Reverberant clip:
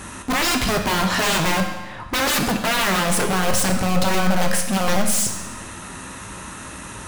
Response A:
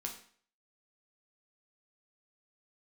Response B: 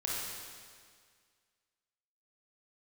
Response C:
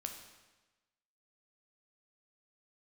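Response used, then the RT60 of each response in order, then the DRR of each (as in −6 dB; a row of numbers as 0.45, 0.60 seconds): C; 0.50, 1.9, 1.2 seconds; 1.0, −5.5, 3.5 decibels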